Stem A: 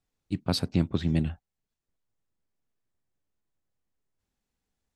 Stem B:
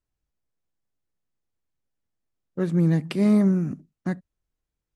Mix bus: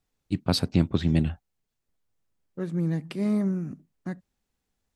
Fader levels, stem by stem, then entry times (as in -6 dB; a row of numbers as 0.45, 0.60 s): +3.0, -6.5 dB; 0.00, 0.00 s